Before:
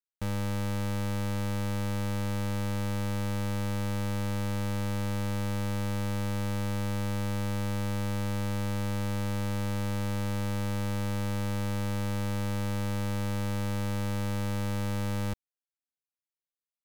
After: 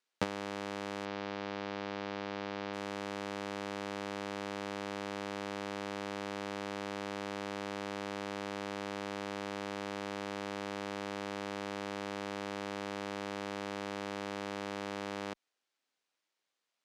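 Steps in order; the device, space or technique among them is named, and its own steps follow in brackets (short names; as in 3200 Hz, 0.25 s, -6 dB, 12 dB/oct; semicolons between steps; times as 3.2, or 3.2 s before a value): public-address speaker with an overloaded transformer (core saturation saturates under 43 Hz; BPF 280–5400 Hz); 1.05–2.74 LPF 5300 Hz 24 dB/oct; gain +14.5 dB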